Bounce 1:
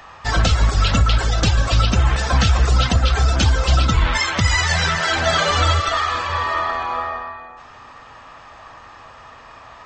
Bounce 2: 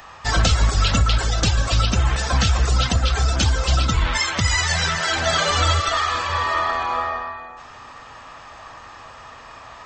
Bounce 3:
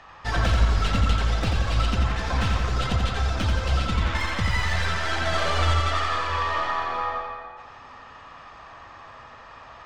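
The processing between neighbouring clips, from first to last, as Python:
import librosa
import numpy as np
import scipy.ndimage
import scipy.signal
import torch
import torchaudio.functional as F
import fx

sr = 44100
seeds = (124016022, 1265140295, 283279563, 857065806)

y1 = fx.high_shelf(x, sr, hz=6300.0, db=9.0)
y1 = fx.rider(y1, sr, range_db=3, speed_s=2.0)
y1 = y1 * 10.0 ** (-2.5 / 20.0)
y2 = fx.tracing_dist(y1, sr, depth_ms=0.24)
y2 = fx.air_absorb(y2, sr, metres=120.0)
y2 = fx.echo_feedback(y2, sr, ms=87, feedback_pct=58, wet_db=-4.5)
y2 = y2 * 10.0 ** (-5.0 / 20.0)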